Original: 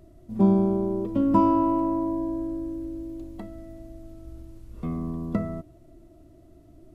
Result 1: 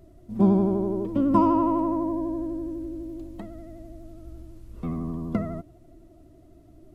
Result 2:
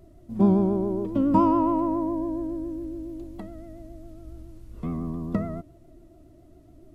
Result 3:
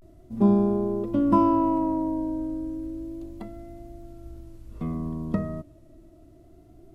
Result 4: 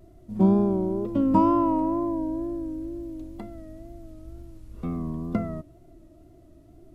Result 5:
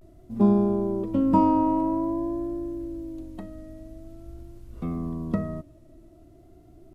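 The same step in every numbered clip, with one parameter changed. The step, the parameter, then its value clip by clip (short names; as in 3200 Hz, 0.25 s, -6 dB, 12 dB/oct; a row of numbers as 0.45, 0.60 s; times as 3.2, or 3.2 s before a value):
vibrato, rate: 12, 7.2, 0.32, 2.1, 0.49 Hz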